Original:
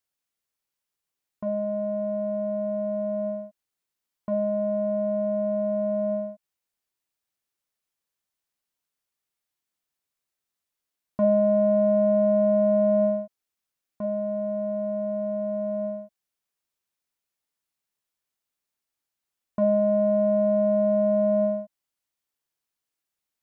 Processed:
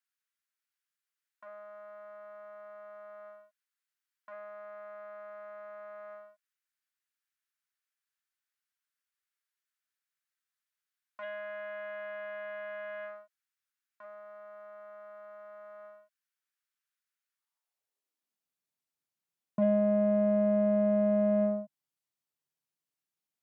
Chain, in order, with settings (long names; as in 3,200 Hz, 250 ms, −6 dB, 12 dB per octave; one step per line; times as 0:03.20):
harmonic generator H 6 −30 dB, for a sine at −12 dBFS
high-pass filter sweep 1,500 Hz → 140 Hz, 0:17.29–0:18.49
level −6.5 dB